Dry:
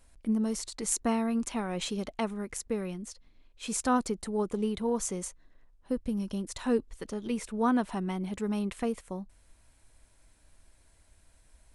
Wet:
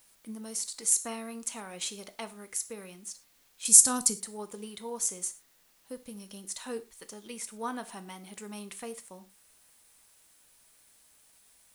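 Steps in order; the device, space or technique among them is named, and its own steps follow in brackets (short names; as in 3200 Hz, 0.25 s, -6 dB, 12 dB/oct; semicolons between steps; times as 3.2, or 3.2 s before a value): 3.65–4.16 tone controls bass +15 dB, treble +14 dB; turntable without a phono preamp (RIAA curve recording; white noise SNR 32 dB); non-linear reverb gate 0.14 s falling, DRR 9.5 dB; gain -7 dB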